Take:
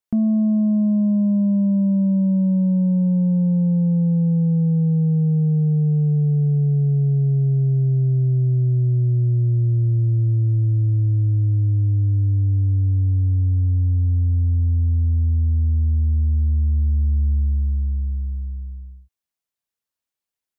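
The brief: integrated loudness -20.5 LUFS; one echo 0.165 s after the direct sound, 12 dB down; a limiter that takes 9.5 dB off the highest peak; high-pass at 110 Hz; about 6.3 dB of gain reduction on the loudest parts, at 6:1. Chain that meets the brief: HPF 110 Hz; compressor 6:1, threshold -23 dBFS; limiter -24.5 dBFS; echo 0.165 s -12 dB; gain +9 dB

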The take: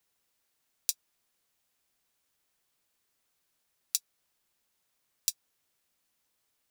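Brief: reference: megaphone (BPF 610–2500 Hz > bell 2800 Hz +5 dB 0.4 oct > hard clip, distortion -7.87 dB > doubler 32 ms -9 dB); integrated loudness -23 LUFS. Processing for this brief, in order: BPF 610–2500 Hz; bell 2800 Hz +5 dB 0.4 oct; hard clip -34.5 dBFS; doubler 32 ms -9 dB; gain +29.5 dB

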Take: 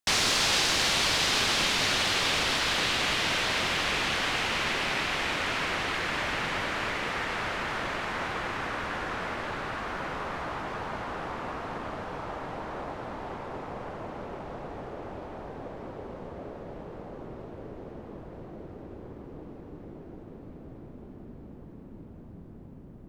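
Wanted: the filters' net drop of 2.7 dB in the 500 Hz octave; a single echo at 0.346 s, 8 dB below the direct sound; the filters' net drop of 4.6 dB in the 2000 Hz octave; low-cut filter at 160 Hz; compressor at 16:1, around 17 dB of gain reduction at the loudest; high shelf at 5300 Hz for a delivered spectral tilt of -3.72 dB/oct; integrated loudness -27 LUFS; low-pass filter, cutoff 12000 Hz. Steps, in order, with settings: HPF 160 Hz; LPF 12000 Hz; bell 500 Hz -3 dB; bell 2000 Hz -4.5 dB; high shelf 5300 Hz -7.5 dB; compressor 16:1, threshold -43 dBFS; echo 0.346 s -8 dB; gain +19 dB

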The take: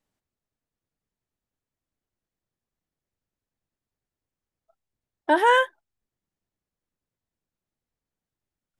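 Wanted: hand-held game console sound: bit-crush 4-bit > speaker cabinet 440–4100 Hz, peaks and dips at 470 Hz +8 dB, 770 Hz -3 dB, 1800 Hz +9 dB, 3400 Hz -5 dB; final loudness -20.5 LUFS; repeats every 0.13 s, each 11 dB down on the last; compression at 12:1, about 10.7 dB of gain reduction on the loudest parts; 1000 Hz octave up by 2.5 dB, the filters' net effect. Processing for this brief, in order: bell 1000 Hz +3 dB; compressor 12:1, threshold -23 dBFS; feedback echo 0.13 s, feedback 28%, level -11 dB; bit-crush 4-bit; speaker cabinet 440–4100 Hz, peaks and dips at 470 Hz +8 dB, 770 Hz -3 dB, 1800 Hz +9 dB, 3400 Hz -5 dB; gain +5.5 dB

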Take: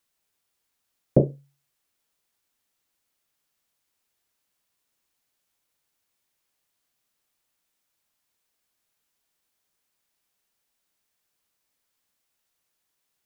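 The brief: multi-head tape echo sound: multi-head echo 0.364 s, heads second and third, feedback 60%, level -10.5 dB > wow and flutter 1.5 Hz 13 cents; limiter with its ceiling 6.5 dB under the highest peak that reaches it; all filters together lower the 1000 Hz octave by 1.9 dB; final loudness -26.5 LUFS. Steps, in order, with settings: bell 1000 Hz -3.5 dB; limiter -11 dBFS; multi-head echo 0.364 s, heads second and third, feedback 60%, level -10.5 dB; wow and flutter 1.5 Hz 13 cents; gain +10 dB

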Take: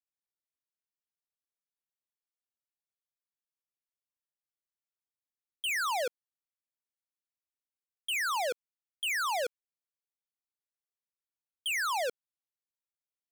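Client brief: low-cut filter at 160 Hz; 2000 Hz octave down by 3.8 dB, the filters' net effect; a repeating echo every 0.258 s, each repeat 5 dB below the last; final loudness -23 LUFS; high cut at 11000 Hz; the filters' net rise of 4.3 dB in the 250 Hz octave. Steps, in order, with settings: HPF 160 Hz; LPF 11000 Hz; bell 250 Hz +7 dB; bell 2000 Hz -5 dB; feedback echo 0.258 s, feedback 56%, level -5 dB; gain +11 dB

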